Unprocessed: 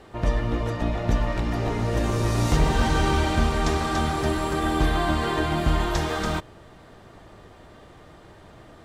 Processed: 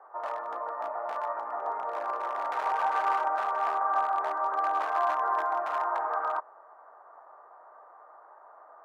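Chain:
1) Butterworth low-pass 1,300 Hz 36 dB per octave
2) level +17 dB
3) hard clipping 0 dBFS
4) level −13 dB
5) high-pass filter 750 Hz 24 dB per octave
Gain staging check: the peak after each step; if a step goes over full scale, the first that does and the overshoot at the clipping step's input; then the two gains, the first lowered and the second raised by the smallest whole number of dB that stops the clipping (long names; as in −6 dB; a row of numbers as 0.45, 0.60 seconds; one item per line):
−10.5, +6.5, 0.0, −13.0, −15.0 dBFS
step 2, 6.5 dB
step 2 +10 dB, step 4 −6 dB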